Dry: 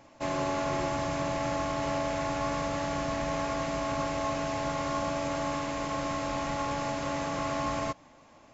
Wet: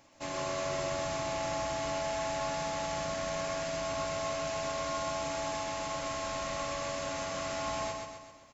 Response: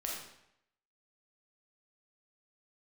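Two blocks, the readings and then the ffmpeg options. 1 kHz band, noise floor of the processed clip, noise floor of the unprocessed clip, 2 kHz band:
-4.0 dB, -53 dBFS, -56 dBFS, -2.5 dB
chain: -af "highshelf=f=2500:g=10,aecho=1:1:129|258|387|516|645|774|903:0.631|0.322|0.164|0.0837|0.0427|0.0218|0.0111,volume=0.398"

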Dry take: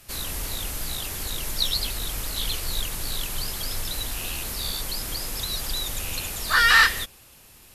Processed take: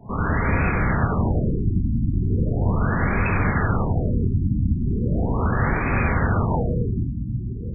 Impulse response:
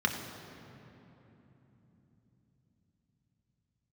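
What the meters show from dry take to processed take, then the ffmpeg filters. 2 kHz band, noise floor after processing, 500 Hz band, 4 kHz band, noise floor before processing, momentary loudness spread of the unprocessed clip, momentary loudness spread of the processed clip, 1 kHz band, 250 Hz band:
-4.0 dB, -28 dBFS, +13.5 dB, under -40 dB, -51 dBFS, 12 LU, 3 LU, +3.0 dB, +19.5 dB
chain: -filter_complex "[0:a]asplit=2[s0][s1];[s1]acompressor=threshold=0.0282:ratio=6,volume=0.944[s2];[s0][s2]amix=inputs=2:normalize=0[s3];[1:a]atrim=start_sample=2205,asetrate=41895,aresample=44100[s4];[s3][s4]afir=irnorm=-1:irlink=0,afftfilt=real='re*lt(b*sr/1024,320*pow(2600/320,0.5+0.5*sin(2*PI*0.38*pts/sr)))':imag='im*lt(b*sr/1024,320*pow(2600/320,0.5+0.5*sin(2*PI*0.38*pts/sr)))':win_size=1024:overlap=0.75,volume=1.41"

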